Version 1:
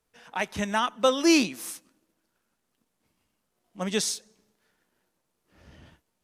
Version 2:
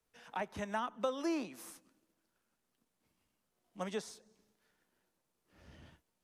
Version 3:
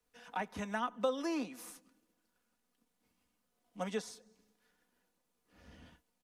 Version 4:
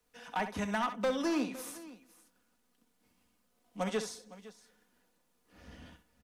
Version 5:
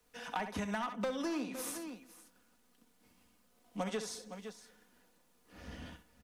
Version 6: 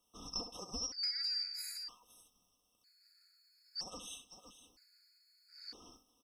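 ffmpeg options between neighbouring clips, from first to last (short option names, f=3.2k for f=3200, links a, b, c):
-filter_complex "[0:a]acrossover=split=140|1600[a][b][c];[c]alimiter=limit=-21dB:level=0:latency=1:release=246[d];[a][b][d]amix=inputs=3:normalize=0,acrossover=split=450|1500[e][f][g];[e]acompressor=threshold=-38dB:ratio=4[h];[f]acompressor=threshold=-29dB:ratio=4[i];[g]acompressor=threshold=-46dB:ratio=4[j];[h][i][j]amix=inputs=3:normalize=0,volume=-5.5dB"
-af "aecho=1:1:4.1:0.5"
-af "asoftclip=type=hard:threshold=-31.5dB,aecho=1:1:65|510:0.299|0.126,volume=5dB"
-af "acompressor=threshold=-39dB:ratio=6,volume=4.5dB"
-af "afftfilt=real='real(if(lt(b,272),68*(eq(floor(b/68),0)*1+eq(floor(b/68),1)*2+eq(floor(b/68),2)*3+eq(floor(b/68),3)*0)+mod(b,68),b),0)':imag='imag(if(lt(b,272),68*(eq(floor(b/68),0)*1+eq(floor(b/68),1)*2+eq(floor(b/68),2)*3+eq(floor(b/68),3)*0)+mod(b,68),b),0)':win_size=2048:overlap=0.75,afftfilt=real='re*gt(sin(2*PI*0.52*pts/sr)*(1-2*mod(floor(b*sr/1024/1300),2)),0)':imag='im*gt(sin(2*PI*0.52*pts/sr)*(1-2*mod(floor(b*sr/1024/1300),2)),0)':win_size=1024:overlap=0.75,volume=-1dB"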